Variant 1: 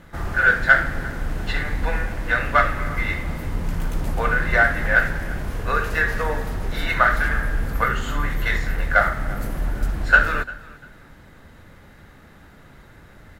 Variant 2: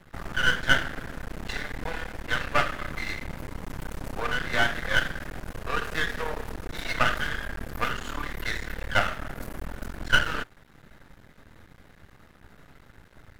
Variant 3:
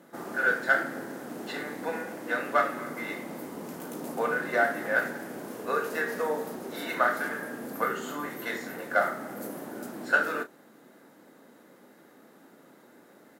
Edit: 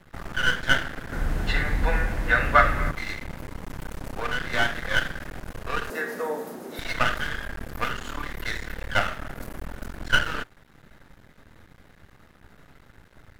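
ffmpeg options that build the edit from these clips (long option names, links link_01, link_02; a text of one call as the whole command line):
ffmpeg -i take0.wav -i take1.wav -i take2.wav -filter_complex "[1:a]asplit=3[link_01][link_02][link_03];[link_01]atrim=end=1.122[link_04];[0:a]atrim=start=1.118:end=2.912[link_05];[link_02]atrim=start=2.908:end=5.902[link_06];[2:a]atrim=start=5.898:end=6.792[link_07];[link_03]atrim=start=6.788[link_08];[link_04][link_05]acrossfade=duration=0.004:curve1=hsin:curve2=hsin[link_09];[link_09][link_06]acrossfade=duration=0.004:curve1=hsin:curve2=hsin[link_10];[link_10][link_07]acrossfade=duration=0.004:curve1=hsin:curve2=hsin[link_11];[link_11][link_08]acrossfade=duration=0.004:curve1=hsin:curve2=hsin" out.wav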